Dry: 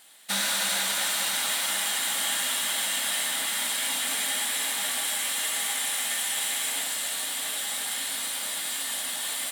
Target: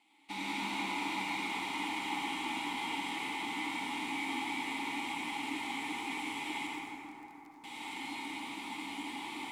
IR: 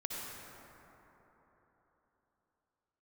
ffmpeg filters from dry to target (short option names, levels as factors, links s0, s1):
-filter_complex "[0:a]aeval=exprs='0.211*(cos(1*acos(clip(val(0)/0.211,-1,1)))-cos(1*PI/2))+0.00596*(cos(5*acos(clip(val(0)/0.211,-1,1)))-cos(5*PI/2))+0.0376*(cos(6*acos(clip(val(0)/0.211,-1,1)))-cos(6*PI/2))':c=same,asplit=3[s0][s1][s2];[s0]bandpass=f=300:t=q:w=8,volume=1[s3];[s1]bandpass=f=870:t=q:w=8,volume=0.501[s4];[s2]bandpass=f=2240:t=q:w=8,volume=0.355[s5];[s3][s4][s5]amix=inputs=3:normalize=0,asettb=1/sr,asplit=3[s6][s7][s8];[s6]atrim=end=6.674[s9];[s7]atrim=start=6.67:end=7.64,asetpts=PTS-STARTPTS,afade=t=in:d=0.004:c=qsin,afade=t=out:st=0.966:d=0.004:c=qsin,acrusher=bits=5:mix=0:aa=0.5[s10];[s8]atrim=start=7.636[s11];[s9][s10]acrossfade=d=0.004:c1=hsin:c2=qsin[s12];[s12][s11]acrossfade=d=0.004:c1=qsin:c2=hsin[s13];[1:a]atrim=start_sample=2205[s14];[s13][s14]afir=irnorm=-1:irlink=0,volume=2.37"